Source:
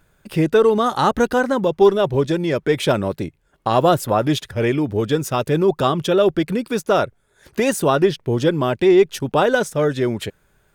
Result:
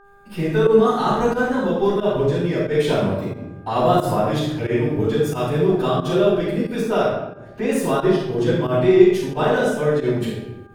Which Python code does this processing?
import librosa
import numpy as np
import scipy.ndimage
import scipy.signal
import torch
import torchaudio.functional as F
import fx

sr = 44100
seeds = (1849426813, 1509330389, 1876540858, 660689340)

y = fx.lowpass(x, sr, hz=2200.0, slope=6, at=(7.03, 7.71))
y = fx.room_shoebox(y, sr, seeds[0], volume_m3=330.0, walls='mixed', distance_m=7.4)
y = fx.volume_shaper(y, sr, bpm=90, per_beat=1, depth_db=-14, release_ms=107.0, shape='fast start')
y = fx.dmg_buzz(y, sr, base_hz=400.0, harmonics=4, level_db=-33.0, tilt_db=-1, odd_only=False)
y = F.gain(torch.from_numpy(y), -18.0).numpy()